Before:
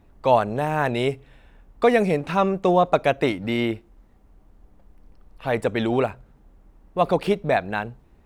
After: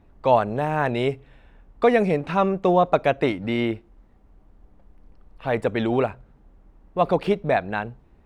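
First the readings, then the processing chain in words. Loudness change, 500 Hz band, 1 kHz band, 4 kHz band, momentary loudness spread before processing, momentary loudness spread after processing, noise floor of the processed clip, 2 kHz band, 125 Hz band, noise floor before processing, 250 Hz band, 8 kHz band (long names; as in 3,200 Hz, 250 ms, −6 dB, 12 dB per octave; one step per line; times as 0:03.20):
0.0 dB, 0.0 dB, 0.0 dB, −2.5 dB, 11 LU, 11 LU, −56 dBFS, −1.0 dB, 0.0 dB, −55 dBFS, 0.0 dB, can't be measured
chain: high-shelf EQ 6,100 Hz −11.5 dB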